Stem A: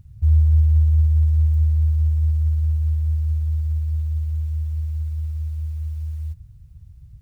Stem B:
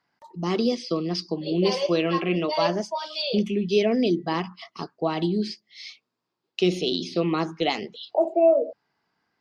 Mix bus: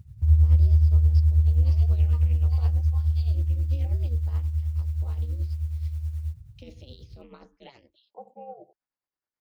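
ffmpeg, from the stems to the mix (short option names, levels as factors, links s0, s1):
-filter_complex "[0:a]highpass=50,volume=1.12[s0];[1:a]aeval=exprs='val(0)*sin(2*PI*130*n/s)':c=same,volume=0.119[s1];[s0][s1]amix=inputs=2:normalize=0,tremolo=f=9.4:d=0.6"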